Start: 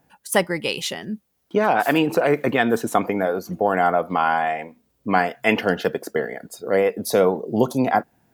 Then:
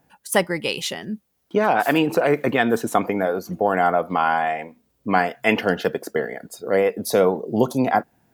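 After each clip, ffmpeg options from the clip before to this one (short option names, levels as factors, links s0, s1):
-af anull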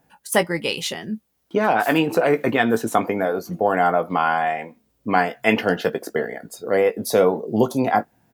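-filter_complex "[0:a]asplit=2[s0][s1];[s1]adelay=18,volume=0.316[s2];[s0][s2]amix=inputs=2:normalize=0"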